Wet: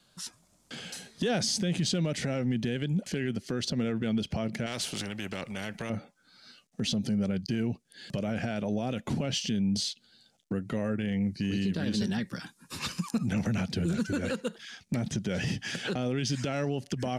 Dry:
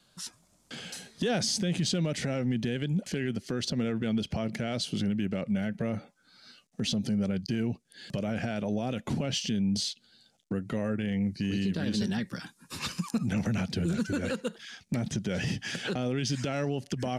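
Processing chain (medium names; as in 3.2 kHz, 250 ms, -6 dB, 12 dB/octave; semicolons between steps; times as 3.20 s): 4.66–5.90 s: spectrum-flattening compressor 2:1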